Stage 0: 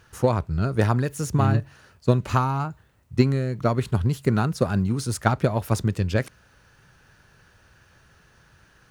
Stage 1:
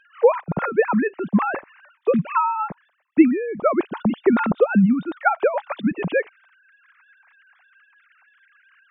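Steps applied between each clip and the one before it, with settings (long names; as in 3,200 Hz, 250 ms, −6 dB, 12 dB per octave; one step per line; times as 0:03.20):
three sine waves on the formant tracks
level +2.5 dB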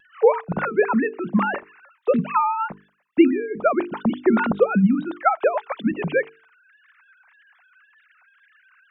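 tape wow and flutter 89 cents
mains-hum notches 50/100/150/200/250/300/350/400/450 Hz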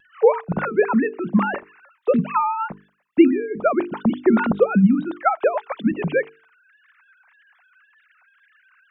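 low-shelf EQ 440 Hz +4 dB
level −1 dB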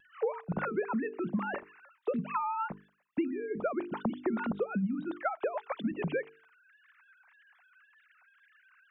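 downward compressor 6 to 1, threshold −23 dBFS, peak gain reduction 15 dB
level −6 dB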